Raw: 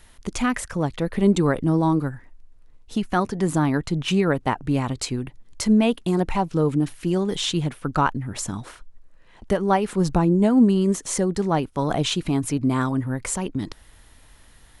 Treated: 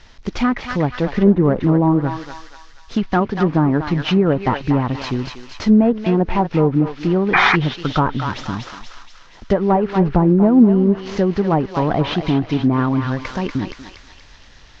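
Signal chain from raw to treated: CVSD coder 32 kbps; on a send: thinning echo 239 ms, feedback 58%, high-pass 1.1 kHz, level -4 dB; on the sum: low-pass that closes with the level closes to 980 Hz, closed at -15.5 dBFS; painted sound noise, 7.33–7.56 s, 700–2500 Hz -19 dBFS; trim +5.5 dB

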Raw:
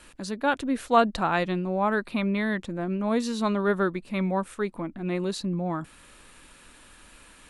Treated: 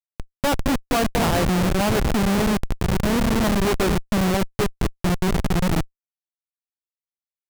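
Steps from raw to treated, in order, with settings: expander -47 dBFS; echo whose repeats swap between lows and highs 222 ms, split 970 Hz, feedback 60%, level -6.5 dB; Schmitt trigger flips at -24 dBFS; trim +8 dB

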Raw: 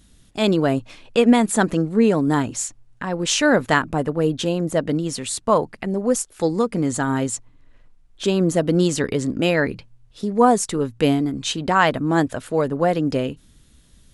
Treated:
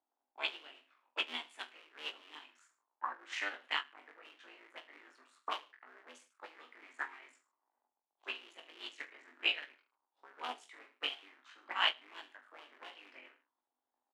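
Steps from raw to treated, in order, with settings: cycle switcher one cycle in 3, muted; dynamic bell 1 kHz, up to +3 dB, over -33 dBFS, Q 1.4; auto-wah 800–3000 Hz, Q 5.3, up, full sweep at -15.5 dBFS; rippled Chebyshev high-pass 240 Hz, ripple 3 dB; on a send: reverse bouncing-ball echo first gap 20 ms, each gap 1.2×, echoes 5; on the sum: upward expansion 2.5:1, over -42 dBFS; trim +4.5 dB

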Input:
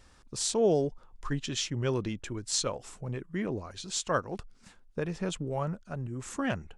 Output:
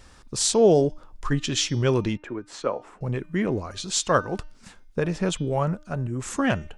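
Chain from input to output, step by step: de-hum 303.1 Hz, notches 21; 2.17–3.01 s: three-band isolator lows -16 dB, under 220 Hz, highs -23 dB, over 2.1 kHz; trim +8 dB

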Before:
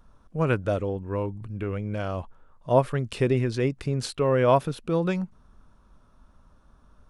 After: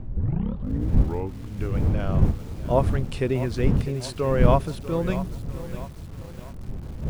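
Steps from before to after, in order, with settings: tape start-up on the opening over 1.34 s; wind noise 120 Hz -24 dBFS; bit-crushed delay 646 ms, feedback 55%, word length 6-bit, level -13 dB; trim -1.5 dB

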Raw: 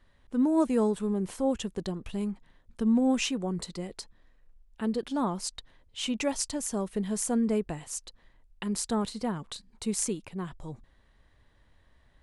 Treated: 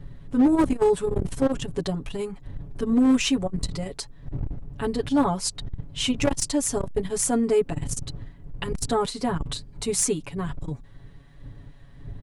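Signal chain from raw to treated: wind noise 87 Hz -38 dBFS; comb 7.1 ms, depth 98%; hard clipper -18 dBFS, distortion -17 dB; transformer saturation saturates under 100 Hz; trim +5 dB

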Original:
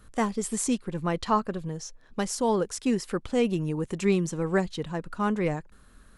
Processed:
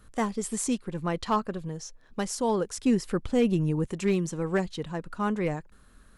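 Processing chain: overload inside the chain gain 16 dB; 2.77–3.87 s: bass shelf 250 Hz +7.5 dB; trim -1.5 dB

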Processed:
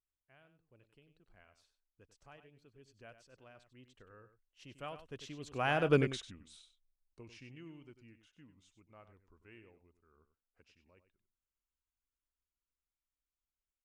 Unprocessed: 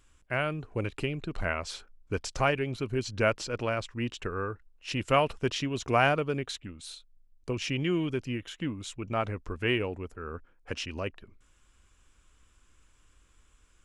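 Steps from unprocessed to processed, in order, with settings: Doppler pass-by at 5.95 s, 20 m/s, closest 1.2 m; delay 96 ms -11.5 dB; trim +4.5 dB

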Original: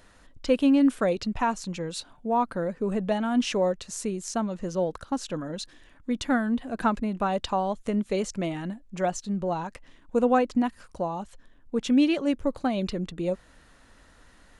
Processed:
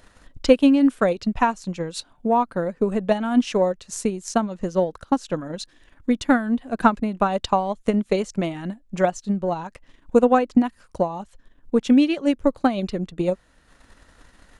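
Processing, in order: transient shaper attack +7 dB, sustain -6 dB; trim +2.5 dB

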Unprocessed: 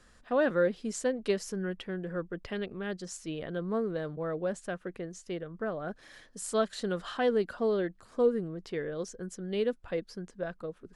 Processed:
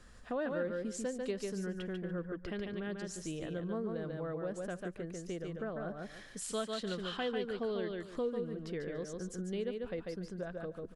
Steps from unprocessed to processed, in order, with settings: 6.41–8.57 s: peaking EQ 3.1 kHz +9.5 dB 1.3 oct; feedback delay 144 ms, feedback 18%, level -4.5 dB; compression 2:1, threshold -43 dBFS, peak gain reduction 12.5 dB; bass shelf 200 Hz +5.5 dB

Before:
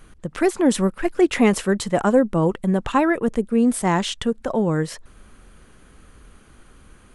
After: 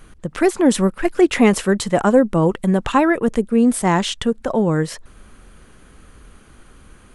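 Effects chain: 1.05–3.44 s: tape noise reduction on one side only encoder only; trim +3 dB

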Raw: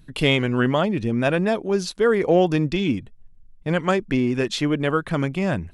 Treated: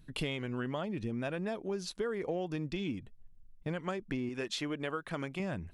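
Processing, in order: 4.29–5.40 s: bass shelf 260 Hz -10 dB; compression, threshold -25 dBFS, peak gain reduction 12 dB; trim -7.5 dB

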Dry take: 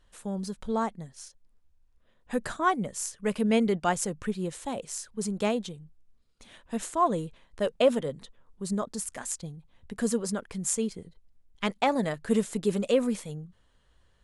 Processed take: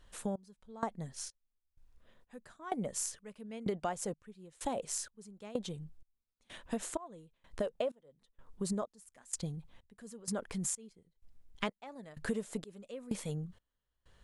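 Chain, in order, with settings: trance gate "xxx....x" 127 bpm -24 dB; dynamic bell 630 Hz, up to +6 dB, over -41 dBFS, Q 1; compression 10:1, threshold -35 dBFS, peak gain reduction 23.5 dB; 9.98–10.92 s: transient shaper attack -3 dB, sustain +3 dB; trim +2.5 dB

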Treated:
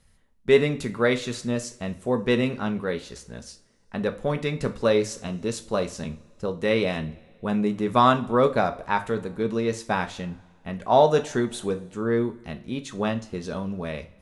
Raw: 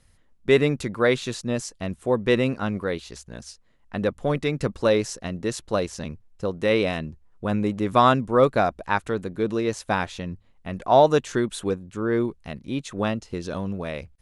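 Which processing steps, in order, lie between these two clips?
5.15–5.63 s: band-stop 1.9 kHz, Q 8.7; two-slope reverb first 0.31 s, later 1.9 s, from -22 dB, DRR 6.5 dB; trim -2 dB

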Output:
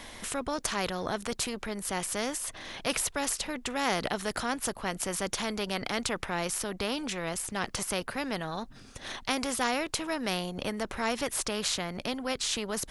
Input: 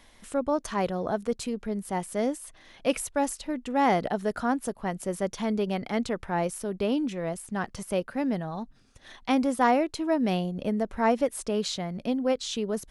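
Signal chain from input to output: spectrum-flattening compressor 2:1; trim -1.5 dB

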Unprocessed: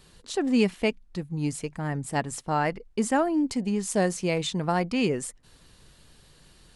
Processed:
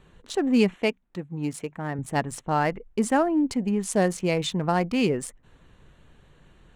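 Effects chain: local Wiener filter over 9 samples; 0.76–1.99 s: high-pass 220 Hz 6 dB/octave; trim +2 dB

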